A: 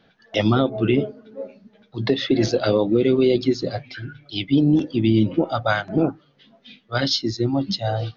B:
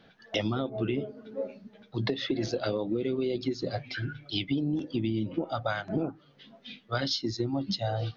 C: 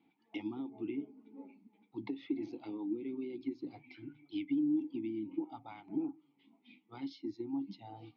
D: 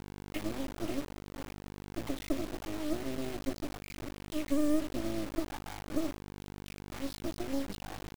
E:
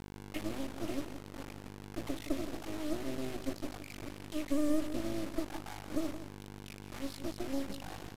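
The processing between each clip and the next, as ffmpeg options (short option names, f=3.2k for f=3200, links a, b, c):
-af "acompressor=threshold=-27dB:ratio=6"
-filter_complex "[0:a]asplit=3[a][b][c];[a]bandpass=f=300:t=q:w=8,volume=0dB[d];[b]bandpass=f=870:t=q:w=8,volume=-6dB[e];[c]bandpass=f=2.24k:t=q:w=8,volume=-9dB[f];[d][e][f]amix=inputs=3:normalize=0"
-af "aeval=exprs='val(0)+0.00316*(sin(2*PI*50*n/s)+sin(2*PI*2*50*n/s)/2+sin(2*PI*3*50*n/s)/3+sin(2*PI*4*50*n/s)/4+sin(2*PI*5*50*n/s)/5)':c=same,acrusher=bits=5:dc=4:mix=0:aa=0.000001,volume=7dB"
-filter_complex "[0:a]asplit=2[a][b];[b]aecho=0:1:169:0.266[c];[a][c]amix=inputs=2:normalize=0,aresample=32000,aresample=44100,volume=-2dB"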